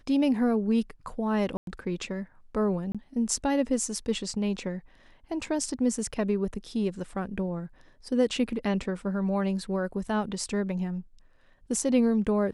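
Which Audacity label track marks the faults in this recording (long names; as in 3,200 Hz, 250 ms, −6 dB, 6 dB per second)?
1.570000	1.670000	drop-out 102 ms
2.920000	2.950000	drop-out 26 ms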